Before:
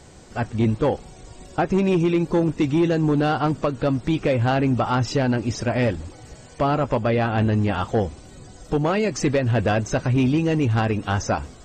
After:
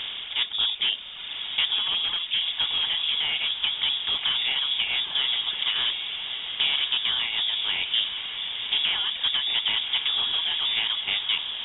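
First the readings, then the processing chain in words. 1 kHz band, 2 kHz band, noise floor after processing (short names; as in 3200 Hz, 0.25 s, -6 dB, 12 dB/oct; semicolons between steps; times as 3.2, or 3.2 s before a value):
-14.0 dB, +0.5 dB, -35 dBFS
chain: per-bin compression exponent 0.4; reverb removal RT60 2 s; inverted band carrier 3600 Hz; diffused feedback echo 1.079 s, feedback 43%, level -7 dB; gain -8.5 dB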